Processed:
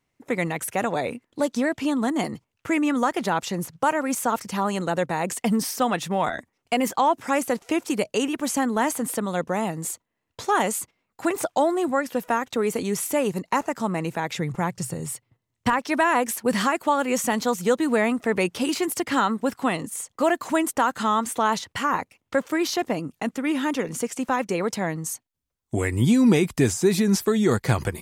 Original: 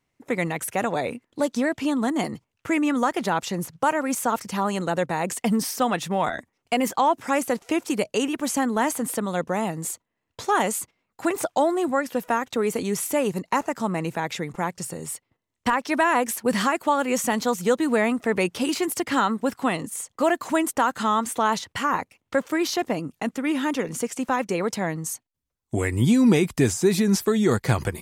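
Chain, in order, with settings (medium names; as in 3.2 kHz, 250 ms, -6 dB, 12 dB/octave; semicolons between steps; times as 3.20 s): 14.36–15.79 s: peaking EQ 120 Hz +13 dB 0.79 oct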